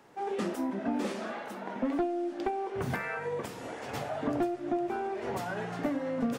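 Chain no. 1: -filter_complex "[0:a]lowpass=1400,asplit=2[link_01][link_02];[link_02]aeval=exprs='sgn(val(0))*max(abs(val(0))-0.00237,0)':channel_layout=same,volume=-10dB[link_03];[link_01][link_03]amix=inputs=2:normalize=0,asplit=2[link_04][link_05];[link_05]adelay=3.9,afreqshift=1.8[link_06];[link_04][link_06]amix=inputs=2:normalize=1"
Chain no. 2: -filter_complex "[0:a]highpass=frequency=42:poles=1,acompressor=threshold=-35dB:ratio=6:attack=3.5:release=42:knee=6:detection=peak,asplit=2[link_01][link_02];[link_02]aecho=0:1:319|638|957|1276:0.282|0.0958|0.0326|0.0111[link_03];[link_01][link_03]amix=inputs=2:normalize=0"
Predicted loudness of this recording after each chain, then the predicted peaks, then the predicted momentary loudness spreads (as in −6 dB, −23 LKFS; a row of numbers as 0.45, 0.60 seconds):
−35.0, −38.5 LKFS; −18.5, −27.5 dBFS; 8, 3 LU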